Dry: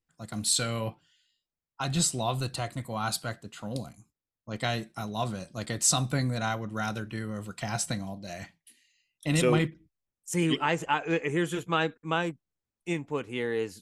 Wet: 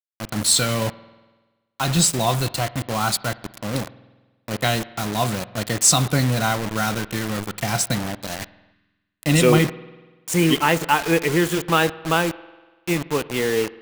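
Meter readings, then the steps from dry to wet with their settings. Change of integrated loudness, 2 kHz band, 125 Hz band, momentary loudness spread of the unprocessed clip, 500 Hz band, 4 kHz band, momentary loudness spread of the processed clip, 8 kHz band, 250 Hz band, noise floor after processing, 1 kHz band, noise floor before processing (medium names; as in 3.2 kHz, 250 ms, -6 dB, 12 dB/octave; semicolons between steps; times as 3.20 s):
+9.0 dB, +9.0 dB, +8.5 dB, 13 LU, +9.0 dB, +9.5 dB, 12 LU, +9.0 dB, +8.5 dB, -71 dBFS, +9.0 dB, under -85 dBFS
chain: bit crusher 6-bit; spring tank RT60 1.3 s, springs 48 ms, chirp 25 ms, DRR 17.5 dB; time-frequency box 8.73–9.22 s, 420–970 Hz -13 dB; trim +8.5 dB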